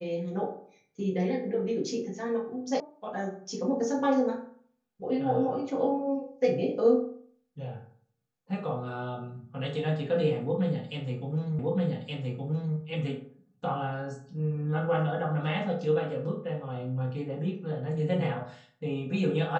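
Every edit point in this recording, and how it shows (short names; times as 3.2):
2.8 sound cut off
11.59 repeat of the last 1.17 s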